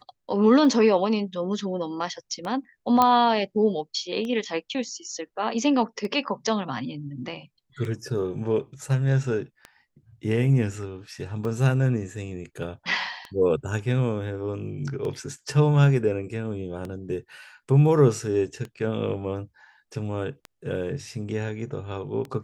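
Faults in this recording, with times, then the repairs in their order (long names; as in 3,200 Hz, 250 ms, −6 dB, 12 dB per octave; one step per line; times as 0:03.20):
scratch tick 33 1/3 rpm −21 dBFS
0:03.02: click −7 dBFS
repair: click removal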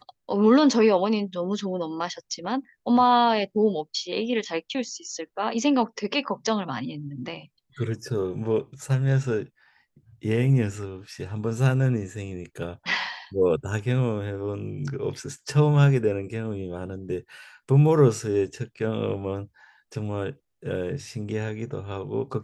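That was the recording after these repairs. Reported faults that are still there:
none of them is left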